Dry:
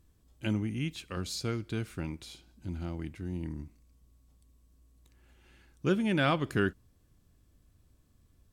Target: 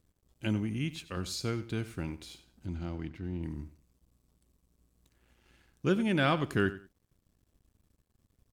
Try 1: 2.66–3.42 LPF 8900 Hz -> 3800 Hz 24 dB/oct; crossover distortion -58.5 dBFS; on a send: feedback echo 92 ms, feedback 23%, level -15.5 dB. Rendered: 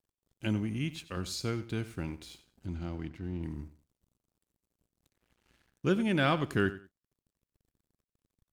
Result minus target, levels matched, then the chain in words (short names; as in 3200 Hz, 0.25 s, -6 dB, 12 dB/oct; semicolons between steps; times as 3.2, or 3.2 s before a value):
crossover distortion: distortion +5 dB
2.66–3.42 LPF 8900 Hz -> 3800 Hz 24 dB/oct; crossover distortion -65 dBFS; on a send: feedback echo 92 ms, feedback 23%, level -15.5 dB